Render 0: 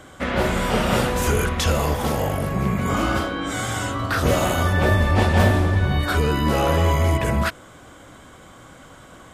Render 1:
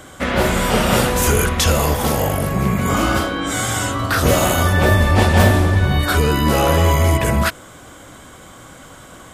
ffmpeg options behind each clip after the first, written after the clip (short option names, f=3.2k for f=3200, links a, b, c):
-af "highshelf=f=6.2k:g=8,volume=4dB"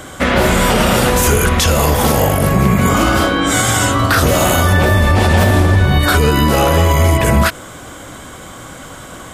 -af "alimiter=limit=-10.5dB:level=0:latency=1:release=70,volume=7.5dB"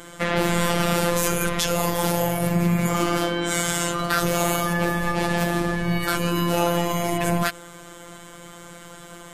-af "afftfilt=real='hypot(re,im)*cos(PI*b)':imag='0':win_size=1024:overlap=0.75,volume=-5.5dB"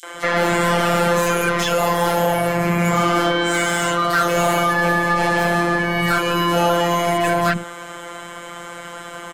-filter_complex "[0:a]acrossover=split=310|4400[a][b][c];[b]adelay=30[d];[a]adelay=140[e];[e][d][c]amix=inputs=3:normalize=0,asplit=2[f][g];[g]highpass=f=720:p=1,volume=19dB,asoftclip=type=tanh:threshold=-6.5dB[h];[f][h]amix=inputs=2:normalize=0,lowpass=f=2.6k:p=1,volume=-6dB"